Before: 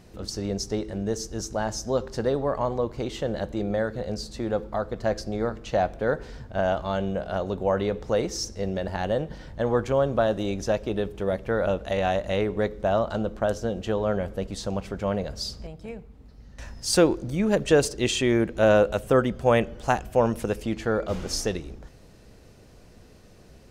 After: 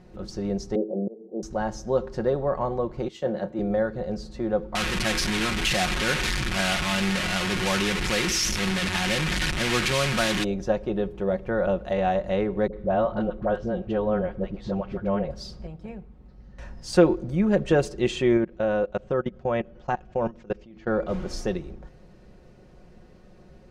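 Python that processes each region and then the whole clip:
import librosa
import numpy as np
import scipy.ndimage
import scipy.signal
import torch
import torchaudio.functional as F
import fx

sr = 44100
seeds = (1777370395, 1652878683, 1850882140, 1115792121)

y = fx.chain(x, sr, fx.ellip_bandpass(low_hz=200.0, high_hz=730.0, order=3, stop_db=50),
    fx.peak_eq(hz=480.0, db=9.5, octaves=0.62),
    fx.auto_swell(attack_ms=339.0), at=(0.75, 1.43))
y = fx.chain(y, sr, fx.highpass(hz=140.0, slope=12),
    fx.doubler(ms=31.0, db=-13),
    fx.band_widen(depth_pct=100), at=(3.08, 3.59))
y = fx.chain(y, sr, fx.delta_mod(bps=64000, step_db=-21.5),
    fx.curve_eq(hz=(320.0, 550.0, 2400.0), db=(0, -9, 13)), at=(4.75, 10.44))
y = fx.chain(y, sr, fx.lowpass(hz=3800.0, slope=12),
    fx.dispersion(late='highs', ms=62.0, hz=540.0), at=(12.67, 15.31))
y = fx.chain(y, sr, fx.steep_lowpass(hz=6700.0, slope=36),
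    fx.level_steps(step_db=24), at=(18.37, 20.87))
y = fx.lowpass(y, sr, hz=1700.0, slope=6)
y = y + 0.5 * np.pad(y, (int(5.5 * sr / 1000.0), 0))[:len(y)]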